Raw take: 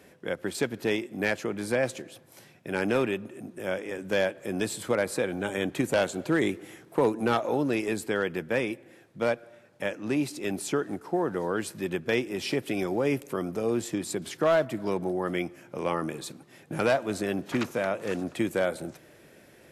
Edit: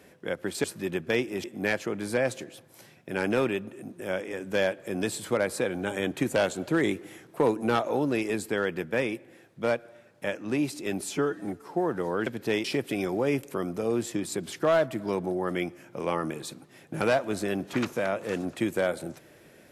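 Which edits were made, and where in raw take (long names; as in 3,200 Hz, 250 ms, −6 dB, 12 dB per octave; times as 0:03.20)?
0:00.64–0:01.02: swap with 0:11.63–0:12.43
0:10.67–0:11.10: time-stretch 1.5×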